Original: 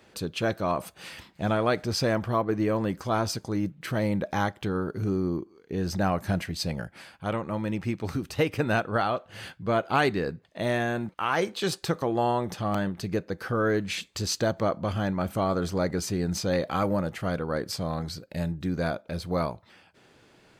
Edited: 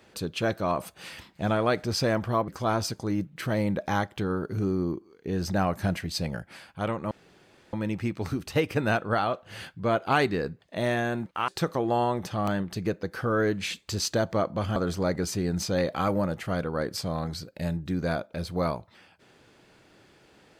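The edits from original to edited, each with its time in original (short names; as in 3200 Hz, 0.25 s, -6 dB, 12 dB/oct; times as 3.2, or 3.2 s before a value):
2.48–2.93 cut
7.56 insert room tone 0.62 s
11.31–11.75 cut
15.03–15.51 cut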